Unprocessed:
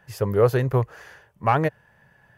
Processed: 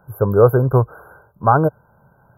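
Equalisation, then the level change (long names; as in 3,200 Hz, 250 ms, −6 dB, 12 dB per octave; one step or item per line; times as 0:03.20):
linear-phase brick-wall band-stop 1,600–11,000 Hz
+6.5 dB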